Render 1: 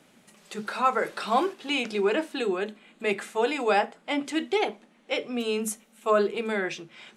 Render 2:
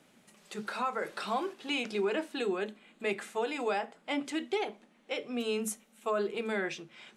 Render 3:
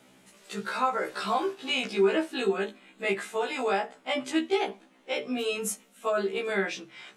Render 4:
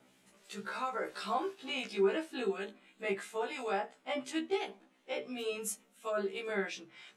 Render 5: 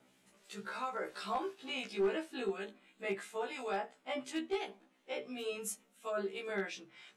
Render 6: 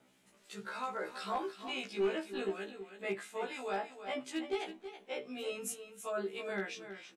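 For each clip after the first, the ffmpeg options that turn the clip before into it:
ffmpeg -i in.wav -af "alimiter=limit=-17dB:level=0:latency=1:release=198,volume=-4.5dB" out.wav
ffmpeg -i in.wav -af "afftfilt=real='re*1.73*eq(mod(b,3),0)':imag='im*1.73*eq(mod(b,3),0)':win_size=2048:overlap=0.75,volume=7.5dB" out.wav
ffmpeg -i in.wav -filter_complex "[0:a]acrossover=split=1900[link_01][link_02];[link_01]aeval=exprs='val(0)*(1-0.5/2+0.5/2*cos(2*PI*2.9*n/s))':channel_layout=same[link_03];[link_02]aeval=exprs='val(0)*(1-0.5/2-0.5/2*cos(2*PI*2.9*n/s))':channel_layout=same[link_04];[link_03][link_04]amix=inputs=2:normalize=0,volume=-5.5dB" out.wav
ffmpeg -i in.wav -af "aeval=exprs='clip(val(0),-1,0.0562)':channel_layout=same,volume=-2.5dB" out.wav
ffmpeg -i in.wav -af "aecho=1:1:325:0.282" out.wav

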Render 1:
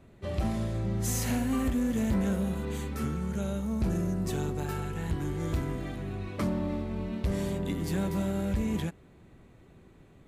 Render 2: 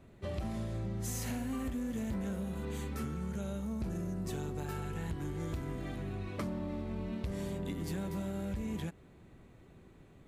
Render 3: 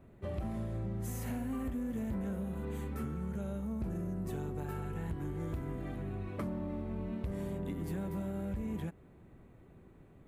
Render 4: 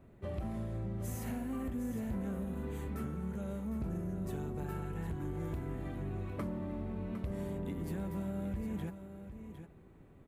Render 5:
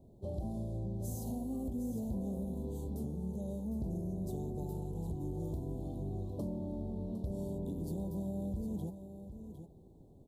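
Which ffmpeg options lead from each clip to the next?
ffmpeg -i in.wav -af "acompressor=threshold=-32dB:ratio=6,volume=-2dB" out.wav
ffmpeg -i in.wav -af "equalizer=frequency=5100:width=0.66:gain=-11.5" out.wav
ffmpeg -i in.wav -af "aecho=1:1:757:0.316,volume=-1dB" out.wav
ffmpeg -i in.wav -af "asuperstop=centerf=1800:order=8:qfactor=0.6" out.wav

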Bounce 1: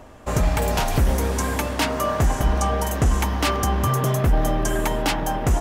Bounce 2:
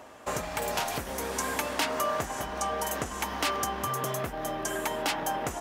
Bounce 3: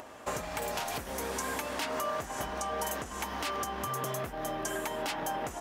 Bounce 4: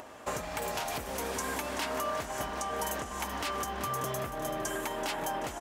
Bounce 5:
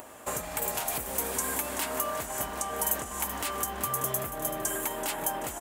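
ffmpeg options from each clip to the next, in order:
ffmpeg -i in.wav -af "acompressor=threshold=-23dB:ratio=4,highpass=frequency=550:poles=1" out.wav
ffmpeg -i in.wav -af "acompressor=mode=upward:threshold=-42dB:ratio=2.5,alimiter=limit=-21dB:level=0:latency=1:release=186,acontrast=28,volume=-6.5dB" out.wav
ffmpeg -i in.wav -af "aecho=1:1:382|764|1146|1528|1910:0.282|0.124|0.0546|0.024|0.0106" out.wav
ffmpeg -i in.wav -af "aexciter=amount=4.6:drive=3.2:freq=7400" out.wav

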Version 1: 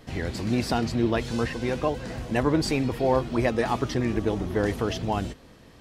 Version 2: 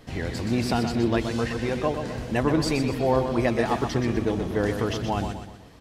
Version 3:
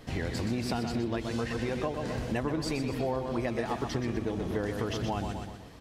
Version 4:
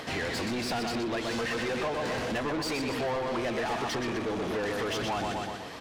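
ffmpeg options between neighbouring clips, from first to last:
ffmpeg -i in.wav -af "aecho=1:1:124|248|372|496|620:0.422|0.181|0.078|0.0335|0.0144" out.wav
ffmpeg -i in.wav -af "acompressor=threshold=-28dB:ratio=6" out.wav
ffmpeg -i in.wav -filter_complex "[0:a]acompressor=mode=upward:threshold=-45dB:ratio=2.5,asplit=2[link_01][link_02];[link_02]highpass=frequency=720:poles=1,volume=27dB,asoftclip=type=tanh:threshold=-16.5dB[link_03];[link_01][link_03]amix=inputs=2:normalize=0,lowpass=frequency=4500:poles=1,volume=-6dB,volume=-6.5dB" out.wav

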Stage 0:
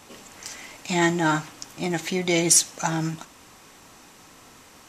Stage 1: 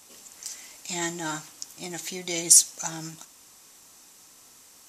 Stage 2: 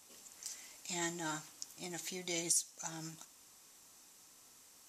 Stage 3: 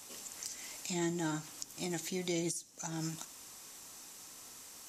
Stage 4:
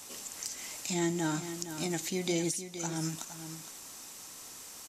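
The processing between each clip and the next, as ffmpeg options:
ffmpeg -i in.wav -af "bass=frequency=250:gain=-3,treble=frequency=4000:gain=14,volume=-10.5dB" out.wav
ffmpeg -i in.wav -af "alimiter=limit=-12.5dB:level=0:latency=1:release=471,volume=-8.5dB" out.wav
ffmpeg -i in.wav -filter_complex "[0:a]acrossover=split=440[link_01][link_02];[link_02]acompressor=threshold=-49dB:ratio=6[link_03];[link_01][link_03]amix=inputs=2:normalize=0,volume=9.5dB" out.wav
ffmpeg -i in.wav -af "aecho=1:1:464:0.299,volume=4dB" out.wav

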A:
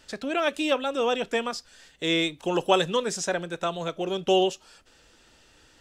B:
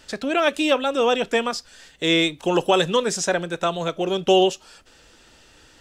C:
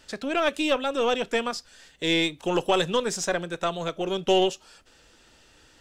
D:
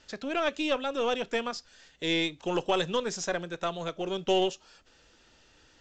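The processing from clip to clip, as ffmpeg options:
ffmpeg -i in.wav -af "alimiter=level_in=12dB:limit=-1dB:release=50:level=0:latency=1,volume=-6.5dB" out.wav
ffmpeg -i in.wav -af "aeval=exprs='0.447*(cos(1*acos(clip(val(0)/0.447,-1,1)))-cos(1*PI/2))+0.0282*(cos(4*acos(clip(val(0)/0.447,-1,1)))-cos(4*PI/2))':channel_layout=same,volume=-4.5dB" out.wav
ffmpeg -i in.wav -af "volume=-4.5dB" -ar 16000 -c:a pcm_mulaw out.wav

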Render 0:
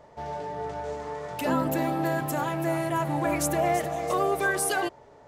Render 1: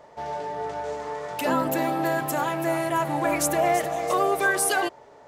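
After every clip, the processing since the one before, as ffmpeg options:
ffmpeg -i in.wav -af "lowshelf=frequency=200:gain=-11,volume=4dB" out.wav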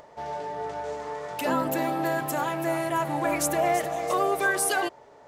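ffmpeg -i in.wav -af "acompressor=mode=upward:threshold=-45dB:ratio=2.5,volume=-2dB" out.wav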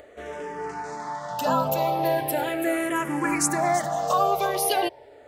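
ffmpeg -i in.wav -filter_complex "[0:a]asplit=2[link_01][link_02];[link_02]afreqshift=-0.38[link_03];[link_01][link_03]amix=inputs=2:normalize=1,volume=5.5dB" out.wav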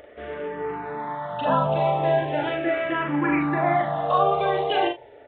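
ffmpeg -i in.wav -filter_complex "[0:a]asplit=2[link_01][link_02];[link_02]aecho=0:1:41|75:0.708|0.237[link_03];[link_01][link_03]amix=inputs=2:normalize=0,aresample=8000,aresample=44100" out.wav

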